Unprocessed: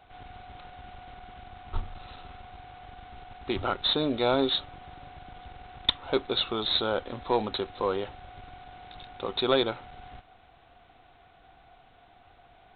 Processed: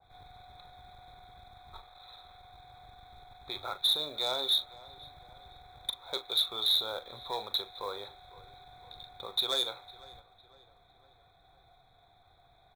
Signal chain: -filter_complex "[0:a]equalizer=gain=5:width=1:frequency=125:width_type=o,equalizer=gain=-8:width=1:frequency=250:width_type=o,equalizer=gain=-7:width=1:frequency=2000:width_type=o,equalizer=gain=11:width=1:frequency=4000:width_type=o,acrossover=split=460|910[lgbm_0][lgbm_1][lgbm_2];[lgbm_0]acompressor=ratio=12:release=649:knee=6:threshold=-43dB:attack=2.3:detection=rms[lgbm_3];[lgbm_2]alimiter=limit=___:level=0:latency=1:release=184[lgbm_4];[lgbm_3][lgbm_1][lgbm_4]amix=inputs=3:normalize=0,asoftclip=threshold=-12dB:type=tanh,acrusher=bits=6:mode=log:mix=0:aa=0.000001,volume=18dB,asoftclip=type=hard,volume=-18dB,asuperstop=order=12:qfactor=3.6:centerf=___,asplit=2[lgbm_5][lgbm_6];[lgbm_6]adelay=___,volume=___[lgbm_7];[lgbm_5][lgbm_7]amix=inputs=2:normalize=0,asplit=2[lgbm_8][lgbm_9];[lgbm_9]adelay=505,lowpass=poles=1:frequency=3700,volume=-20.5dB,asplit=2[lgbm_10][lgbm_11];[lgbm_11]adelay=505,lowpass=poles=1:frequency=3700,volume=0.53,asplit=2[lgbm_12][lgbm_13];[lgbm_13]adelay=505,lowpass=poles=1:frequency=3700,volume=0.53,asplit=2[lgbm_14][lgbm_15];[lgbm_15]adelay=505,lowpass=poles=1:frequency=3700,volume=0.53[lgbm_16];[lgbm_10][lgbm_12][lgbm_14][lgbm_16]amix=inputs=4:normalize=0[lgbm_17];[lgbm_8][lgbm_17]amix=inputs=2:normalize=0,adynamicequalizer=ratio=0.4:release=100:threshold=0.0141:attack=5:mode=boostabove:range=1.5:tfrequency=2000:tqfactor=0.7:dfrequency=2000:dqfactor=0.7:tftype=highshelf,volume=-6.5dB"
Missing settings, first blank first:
-10.5dB, 2900, 40, -12dB